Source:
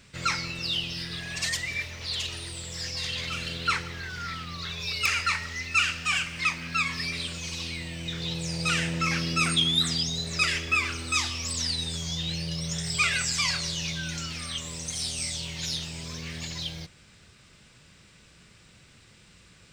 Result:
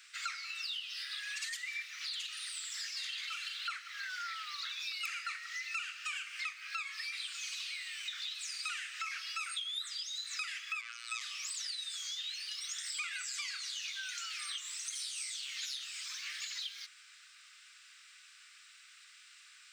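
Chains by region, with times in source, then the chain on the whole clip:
0:10.81–0:11.21: high-shelf EQ 10,000 Hz −10 dB + phases set to zero 117 Hz
whole clip: Butterworth high-pass 1,200 Hz 72 dB per octave; dynamic equaliser 5,400 Hz, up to −5 dB, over −45 dBFS, Q 5.4; downward compressor 6 to 1, threshold −38 dBFS

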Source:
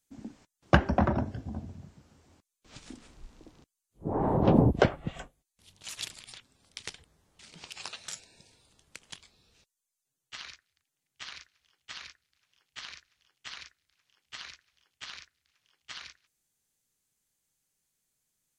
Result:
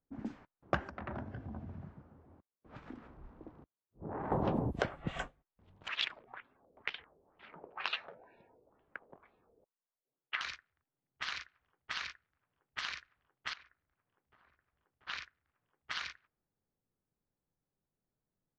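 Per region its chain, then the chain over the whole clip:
0:00.89–0:04.32: phase distortion by the signal itself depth 0.29 ms + high-pass filter 45 Hz + downward compressor 4 to 1, threshold −43 dBFS
0:05.88–0:10.41: auto-filter low-pass sine 2.1 Hz 460–3,400 Hz + three-way crossover with the lows and the highs turned down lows −13 dB, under 260 Hz, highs −15 dB, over 6,600 Hz
0:13.53–0:15.07: running median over 3 samples + downward compressor 16 to 1, threshold −55 dBFS
whole clip: parametric band 1,400 Hz +6.5 dB 1.7 octaves; downward compressor 10 to 1, threshold −31 dBFS; low-pass that shuts in the quiet parts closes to 570 Hz, open at −34 dBFS; level +1.5 dB

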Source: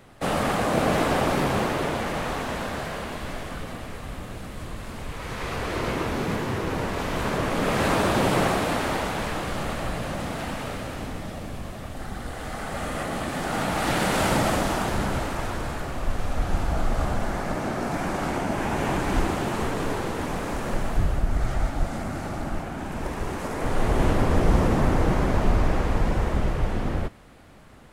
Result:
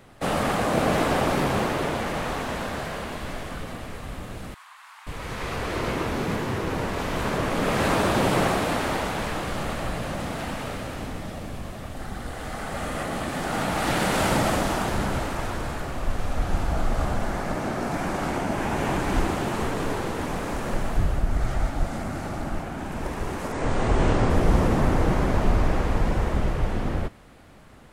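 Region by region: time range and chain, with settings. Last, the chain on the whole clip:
0:04.54–0:05.07: Butterworth high-pass 890 Hz 48 dB per octave + high-shelf EQ 2,100 Hz −9 dB
0:23.52–0:24.30: Butterworth low-pass 8,900 Hz 48 dB per octave + double-tracking delay 26 ms −5.5 dB
whole clip: no processing

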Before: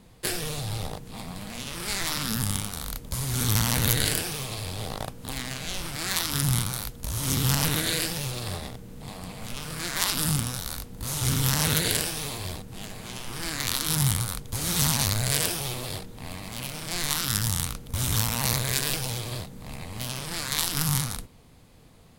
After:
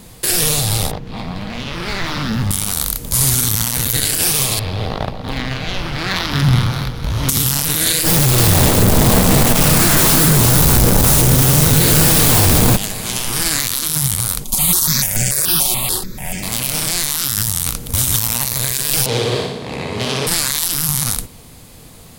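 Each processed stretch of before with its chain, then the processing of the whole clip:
0:00.91–0:02.51: hard clipping −25.5 dBFS + high-frequency loss of the air 260 metres
0:04.59–0:07.29: high-frequency loss of the air 290 metres + delay that swaps between a low-pass and a high-pass 118 ms, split 830 Hz, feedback 72%, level −8.5 dB
0:08.03–0:12.77: sign of each sample alone + tilt shelving filter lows +5 dB, about 1,500 Hz + single-tap delay 351 ms −4.5 dB
0:14.44–0:16.43: comb filter 5.4 ms, depth 56% + step-sequenced phaser 6.9 Hz 450–4,000 Hz
0:19.06–0:20.27: band-pass filter 120–3,600 Hz + parametric band 430 Hz +13 dB 0.52 octaves + flutter between parallel walls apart 10.3 metres, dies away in 0.85 s
whole clip: high-shelf EQ 5,500 Hz +11.5 dB; boost into a limiter +13.5 dB; level −1 dB

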